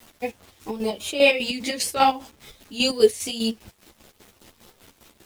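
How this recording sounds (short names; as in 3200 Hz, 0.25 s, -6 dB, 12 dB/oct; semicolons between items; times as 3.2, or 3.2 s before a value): a quantiser's noise floor 8-bit, dither none; chopped level 5 Hz, depth 65%, duty 50%; a shimmering, thickened sound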